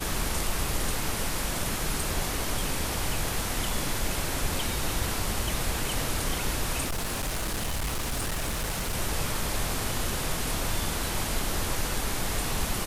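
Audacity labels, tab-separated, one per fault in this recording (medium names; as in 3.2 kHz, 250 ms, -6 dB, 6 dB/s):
6.850000	8.930000	clipped -26 dBFS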